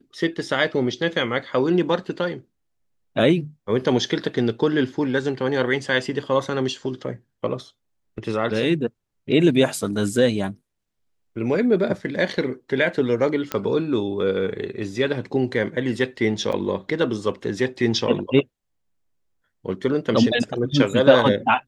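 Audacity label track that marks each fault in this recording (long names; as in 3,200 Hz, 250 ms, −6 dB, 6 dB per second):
13.520000	13.520000	click −9 dBFS
16.520000	16.530000	drop-out 6.1 ms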